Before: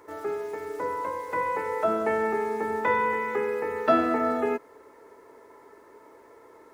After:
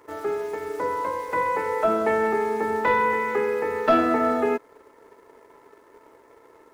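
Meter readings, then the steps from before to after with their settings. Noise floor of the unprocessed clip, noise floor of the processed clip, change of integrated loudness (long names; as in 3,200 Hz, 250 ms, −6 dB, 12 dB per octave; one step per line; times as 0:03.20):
−53 dBFS, −55 dBFS, +3.5 dB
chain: leveller curve on the samples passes 1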